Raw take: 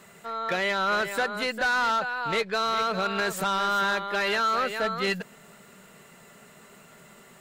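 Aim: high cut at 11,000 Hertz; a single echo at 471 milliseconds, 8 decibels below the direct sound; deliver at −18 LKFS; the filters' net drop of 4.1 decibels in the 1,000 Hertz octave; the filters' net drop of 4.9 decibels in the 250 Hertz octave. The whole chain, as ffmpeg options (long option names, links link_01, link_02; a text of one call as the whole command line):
ffmpeg -i in.wav -af "lowpass=11000,equalizer=frequency=250:width_type=o:gain=-7,equalizer=frequency=1000:width_type=o:gain=-6,aecho=1:1:471:0.398,volume=10.5dB" out.wav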